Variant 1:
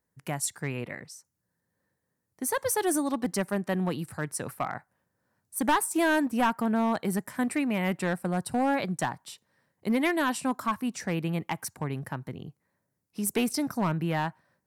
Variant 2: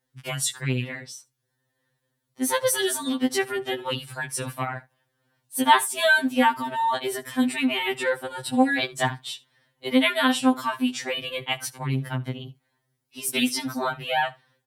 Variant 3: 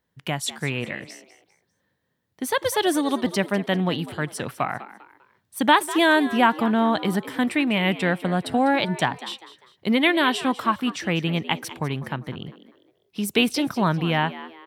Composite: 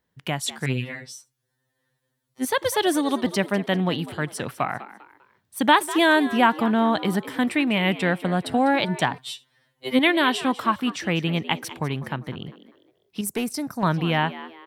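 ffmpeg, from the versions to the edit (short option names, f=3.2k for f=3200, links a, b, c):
-filter_complex "[1:a]asplit=2[a][b];[2:a]asplit=4[c][d][e][f];[c]atrim=end=0.662[g];[a]atrim=start=0.658:end=2.452[h];[d]atrim=start=2.448:end=9.182[i];[b]atrim=start=9.178:end=9.992[j];[e]atrim=start=9.988:end=13.212[k];[0:a]atrim=start=13.208:end=13.832[l];[f]atrim=start=13.828[m];[g][h]acrossfade=d=0.004:c1=hsin:c2=hsin[n];[n][i]acrossfade=d=0.004:c1=hsin:c2=hsin[o];[o][j]acrossfade=d=0.004:c1=hsin:c2=hsin[p];[p][k]acrossfade=d=0.004:c1=hsin:c2=hsin[q];[q][l]acrossfade=d=0.004:c1=hsin:c2=hsin[r];[r][m]acrossfade=d=0.004:c1=hsin:c2=hsin"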